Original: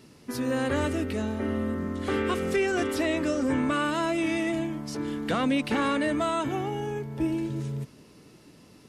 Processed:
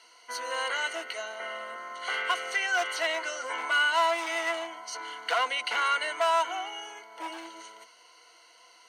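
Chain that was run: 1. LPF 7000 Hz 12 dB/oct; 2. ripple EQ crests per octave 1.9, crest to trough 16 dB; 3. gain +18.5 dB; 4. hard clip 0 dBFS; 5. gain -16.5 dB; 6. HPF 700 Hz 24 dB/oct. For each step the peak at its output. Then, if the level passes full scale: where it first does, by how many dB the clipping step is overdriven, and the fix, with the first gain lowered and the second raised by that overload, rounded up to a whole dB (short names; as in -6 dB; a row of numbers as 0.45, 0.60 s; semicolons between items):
-16.5, -10.5, +8.0, 0.0, -16.5, -13.5 dBFS; step 3, 8.0 dB; step 3 +10.5 dB, step 5 -8.5 dB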